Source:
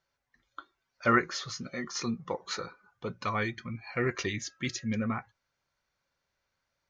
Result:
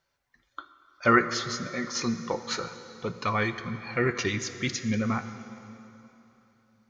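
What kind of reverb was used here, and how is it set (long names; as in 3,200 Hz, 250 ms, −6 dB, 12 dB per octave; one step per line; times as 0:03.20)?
dense smooth reverb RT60 3.2 s, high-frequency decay 0.85×, DRR 10 dB
level +4 dB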